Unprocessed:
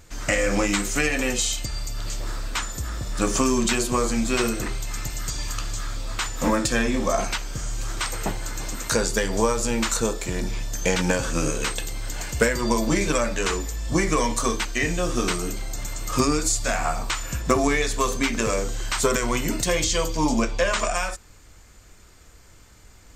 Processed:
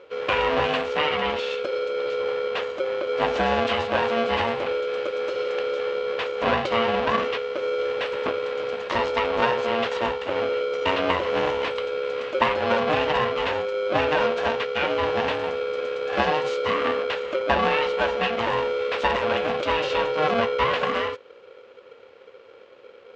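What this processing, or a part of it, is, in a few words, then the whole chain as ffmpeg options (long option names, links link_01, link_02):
ring modulator pedal into a guitar cabinet: -filter_complex "[0:a]asettb=1/sr,asplit=3[link_01][link_02][link_03];[link_01]atrim=end=0.934[link_04];[link_02]atrim=start=0.93:end=1.51,asetpts=PTS-STARTPTS,afade=type=in:duration=0.004:curve=qsin,afade=type=out:start_time=0.576:duration=0.004:curve=qsin,lowpass=6100[link_05];[link_03]atrim=start=1.506[link_06];[link_04][link_05]acrossfade=duration=0.004:curve1=hsin:curve2=qsin[link_07];[link_07][link_06]acrossfade=duration=0.004:curve1=qsin:curve2=hsin,aeval=exprs='val(0)*sgn(sin(2*PI*460*n/s))':channel_layout=same,highpass=91,equalizer=frequency=110:width_type=q:width=4:gain=-3,equalizer=frequency=160:width_type=q:width=4:gain=-9,equalizer=frequency=530:width_type=q:width=4:gain=9,equalizer=frequency=1100:width_type=q:width=4:gain=5,equalizer=frequency=2800:width_type=q:width=4:gain=4,lowpass=frequency=3600:width=0.5412,lowpass=frequency=3600:width=1.3066,volume=-2.5dB"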